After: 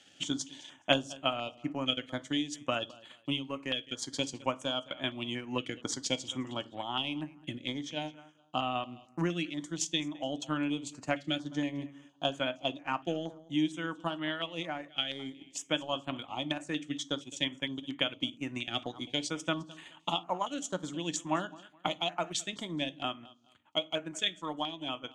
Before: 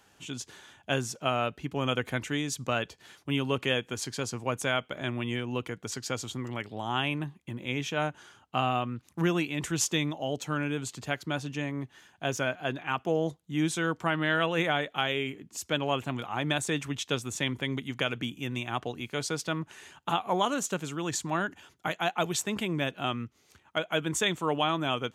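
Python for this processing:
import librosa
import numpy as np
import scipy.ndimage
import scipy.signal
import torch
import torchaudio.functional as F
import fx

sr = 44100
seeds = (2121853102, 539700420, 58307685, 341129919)

p1 = fx.cabinet(x, sr, low_hz=170.0, low_slope=12, high_hz=8400.0, hz=(200.0, 290.0, 420.0, 1500.0, 3200.0), db=(-8, 5, -9, -4, 8))
p2 = fx.rider(p1, sr, range_db=10, speed_s=0.5)
p3 = fx.transient(p2, sr, attack_db=6, sustain_db=-9)
p4 = p3 + fx.echo_feedback(p3, sr, ms=211, feedback_pct=25, wet_db=-20.5, dry=0)
p5 = fx.rev_fdn(p4, sr, rt60_s=0.34, lf_ratio=1.45, hf_ratio=0.75, size_ms=32.0, drr_db=11.5)
p6 = fx.filter_held_notch(p5, sr, hz=4.3, low_hz=990.0, high_hz=5500.0)
y = F.gain(torch.from_numpy(p6), -5.5).numpy()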